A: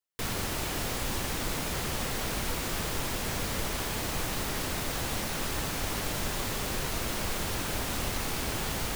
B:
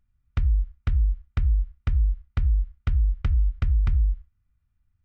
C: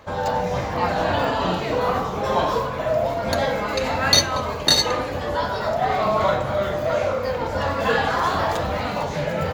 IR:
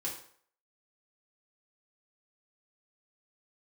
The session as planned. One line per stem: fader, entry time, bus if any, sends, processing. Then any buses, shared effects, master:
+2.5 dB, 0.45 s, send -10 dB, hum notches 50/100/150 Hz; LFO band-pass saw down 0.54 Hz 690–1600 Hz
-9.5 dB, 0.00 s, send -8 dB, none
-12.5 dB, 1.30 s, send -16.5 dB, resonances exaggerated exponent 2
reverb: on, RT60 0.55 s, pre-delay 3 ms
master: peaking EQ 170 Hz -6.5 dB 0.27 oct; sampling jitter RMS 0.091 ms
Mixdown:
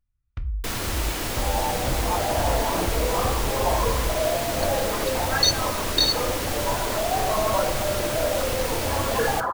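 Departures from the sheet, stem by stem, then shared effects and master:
stem A: missing LFO band-pass saw down 0.54 Hz 690–1600 Hz; stem C -12.5 dB -> -4.5 dB; master: missing sampling jitter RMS 0.091 ms

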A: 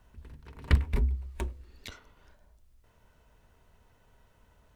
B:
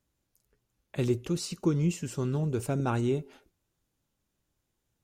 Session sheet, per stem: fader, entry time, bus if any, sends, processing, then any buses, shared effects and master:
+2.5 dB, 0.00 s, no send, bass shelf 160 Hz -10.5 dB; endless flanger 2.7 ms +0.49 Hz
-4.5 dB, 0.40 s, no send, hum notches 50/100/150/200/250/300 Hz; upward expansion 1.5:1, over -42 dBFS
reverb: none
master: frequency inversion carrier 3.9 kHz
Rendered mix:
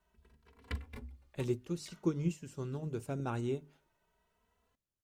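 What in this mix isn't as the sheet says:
stem A +2.5 dB -> -7.5 dB; master: missing frequency inversion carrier 3.9 kHz

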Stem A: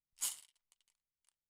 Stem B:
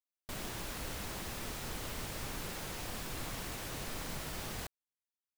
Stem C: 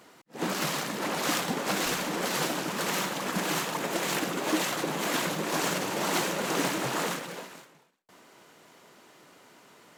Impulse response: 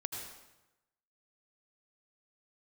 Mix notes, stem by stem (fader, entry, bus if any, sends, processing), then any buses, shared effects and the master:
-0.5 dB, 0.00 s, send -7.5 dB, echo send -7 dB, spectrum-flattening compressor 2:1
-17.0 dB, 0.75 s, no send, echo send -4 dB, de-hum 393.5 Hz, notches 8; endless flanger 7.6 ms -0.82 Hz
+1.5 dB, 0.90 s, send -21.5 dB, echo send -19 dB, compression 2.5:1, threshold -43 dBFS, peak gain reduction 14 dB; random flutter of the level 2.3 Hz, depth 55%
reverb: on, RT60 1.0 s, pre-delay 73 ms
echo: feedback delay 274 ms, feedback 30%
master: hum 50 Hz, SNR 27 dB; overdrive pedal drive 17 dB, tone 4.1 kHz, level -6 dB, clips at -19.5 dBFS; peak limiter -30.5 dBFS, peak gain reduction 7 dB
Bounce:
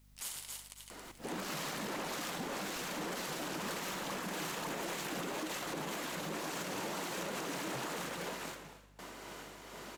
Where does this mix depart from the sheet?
stem C +1.5 dB -> +8.5 dB; master: missing overdrive pedal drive 17 dB, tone 4.1 kHz, level -6 dB, clips at -19.5 dBFS

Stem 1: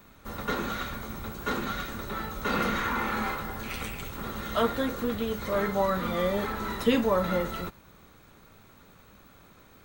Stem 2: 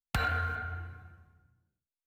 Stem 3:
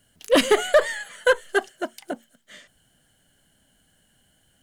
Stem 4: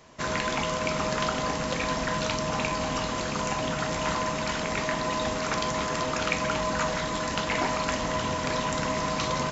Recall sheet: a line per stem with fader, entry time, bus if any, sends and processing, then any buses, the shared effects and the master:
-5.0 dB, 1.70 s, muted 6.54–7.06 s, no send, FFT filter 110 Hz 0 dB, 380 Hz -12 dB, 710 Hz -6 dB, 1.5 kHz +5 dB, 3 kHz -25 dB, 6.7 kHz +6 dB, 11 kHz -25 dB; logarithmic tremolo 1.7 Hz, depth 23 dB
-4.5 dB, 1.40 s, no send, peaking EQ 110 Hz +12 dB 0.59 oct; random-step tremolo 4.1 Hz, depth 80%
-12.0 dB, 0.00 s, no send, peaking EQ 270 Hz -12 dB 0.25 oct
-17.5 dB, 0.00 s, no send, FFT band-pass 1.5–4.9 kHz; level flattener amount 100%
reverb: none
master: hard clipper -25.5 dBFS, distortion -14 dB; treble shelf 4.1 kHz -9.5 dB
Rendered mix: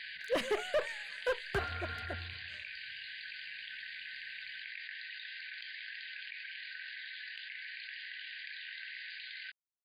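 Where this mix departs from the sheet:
stem 1: muted; stem 2: missing peaking EQ 110 Hz +12 dB 0.59 oct

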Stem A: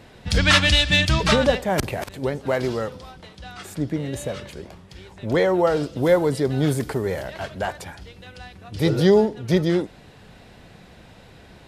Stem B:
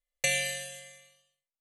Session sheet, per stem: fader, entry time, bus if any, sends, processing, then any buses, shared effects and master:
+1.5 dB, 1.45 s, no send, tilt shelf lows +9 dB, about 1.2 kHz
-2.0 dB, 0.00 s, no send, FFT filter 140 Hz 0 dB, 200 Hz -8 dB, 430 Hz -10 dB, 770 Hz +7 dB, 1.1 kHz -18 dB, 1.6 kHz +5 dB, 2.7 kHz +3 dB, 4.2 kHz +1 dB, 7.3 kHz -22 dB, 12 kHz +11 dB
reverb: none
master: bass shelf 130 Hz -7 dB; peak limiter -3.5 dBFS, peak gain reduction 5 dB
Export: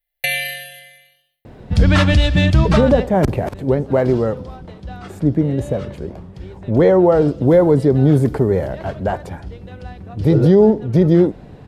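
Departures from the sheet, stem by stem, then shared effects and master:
stem B -2.0 dB -> +5.5 dB; master: missing bass shelf 130 Hz -7 dB

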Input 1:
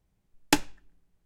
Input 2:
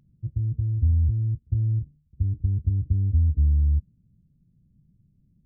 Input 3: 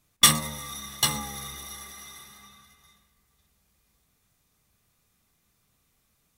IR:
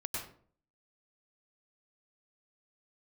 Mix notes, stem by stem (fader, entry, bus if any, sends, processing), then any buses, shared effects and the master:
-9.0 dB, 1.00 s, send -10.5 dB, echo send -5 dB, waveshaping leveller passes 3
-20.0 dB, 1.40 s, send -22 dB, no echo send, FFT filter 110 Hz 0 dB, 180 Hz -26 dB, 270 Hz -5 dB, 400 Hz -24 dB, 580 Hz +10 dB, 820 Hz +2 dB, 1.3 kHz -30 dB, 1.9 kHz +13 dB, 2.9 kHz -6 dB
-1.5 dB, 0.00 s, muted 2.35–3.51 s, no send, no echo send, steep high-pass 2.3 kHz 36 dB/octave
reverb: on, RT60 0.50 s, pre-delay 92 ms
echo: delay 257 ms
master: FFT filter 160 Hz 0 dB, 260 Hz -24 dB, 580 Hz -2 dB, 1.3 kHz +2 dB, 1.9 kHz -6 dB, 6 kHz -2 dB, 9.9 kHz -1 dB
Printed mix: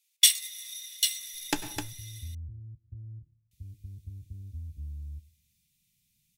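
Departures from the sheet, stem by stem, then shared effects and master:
stem 1: missing waveshaping leveller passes 3; stem 2: missing FFT filter 110 Hz 0 dB, 180 Hz -26 dB, 270 Hz -5 dB, 400 Hz -24 dB, 580 Hz +10 dB, 820 Hz +2 dB, 1.3 kHz -30 dB, 1.9 kHz +13 dB, 2.9 kHz -6 dB; master: missing FFT filter 160 Hz 0 dB, 260 Hz -24 dB, 580 Hz -2 dB, 1.3 kHz +2 dB, 1.9 kHz -6 dB, 6 kHz -2 dB, 9.9 kHz -1 dB

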